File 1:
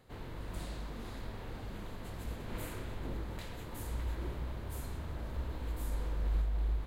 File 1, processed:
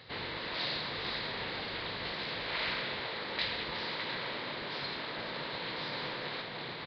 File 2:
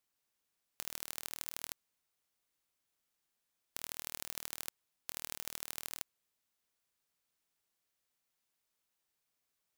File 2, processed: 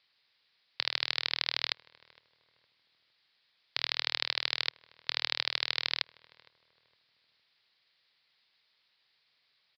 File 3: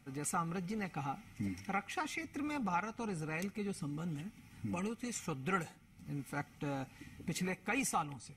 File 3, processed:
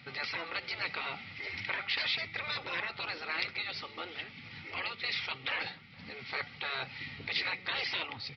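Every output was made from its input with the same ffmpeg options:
-filter_complex "[0:a]highpass=69,aemphasis=mode=production:type=75kf,afftfilt=real='re*lt(hypot(re,im),0.0316)':imag='im*lt(hypot(re,im),0.0316)':win_size=1024:overlap=0.75,equalizer=f=125:t=o:w=1:g=8,equalizer=f=500:t=o:w=1:g=6,equalizer=f=1000:t=o:w=1:g=5,equalizer=f=2000:t=o:w=1:g=11,equalizer=f=4000:t=o:w=1:g=12,asplit=2[s0][s1];[s1]adelay=461,lowpass=f=1000:p=1,volume=0.106,asplit=2[s2][s3];[s3]adelay=461,lowpass=f=1000:p=1,volume=0.41,asplit=2[s4][s5];[s5]adelay=461,lowpass=f=1000:p=1,volume=0.41[s6];[s0][s2][s4][s6]amix=inputs=4:normalize=0,aresample=11025,aresample=44100"

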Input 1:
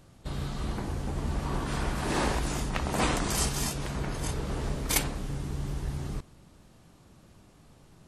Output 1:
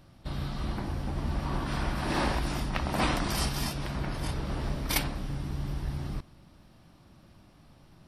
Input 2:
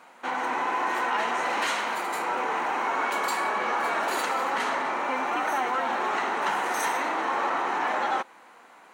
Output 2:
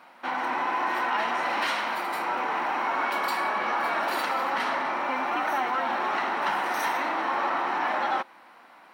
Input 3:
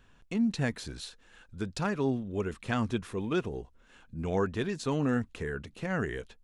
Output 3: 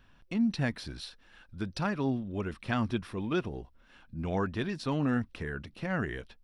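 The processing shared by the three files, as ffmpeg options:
-af "superequalizer=7b=0.562:15b=0.282:16b=0.562"

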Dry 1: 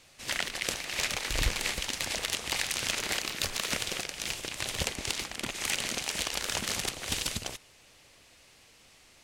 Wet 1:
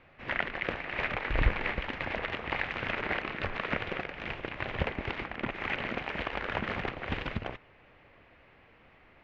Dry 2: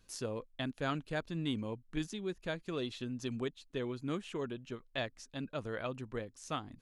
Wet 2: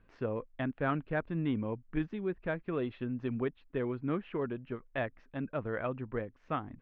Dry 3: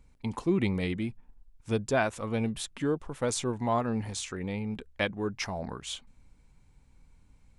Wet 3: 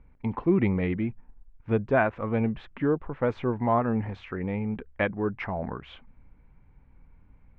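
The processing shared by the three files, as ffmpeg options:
-af "lowpass=f=2200:w=0.5412,lowpass=f=2200:w=1.3066,volume=1.58"

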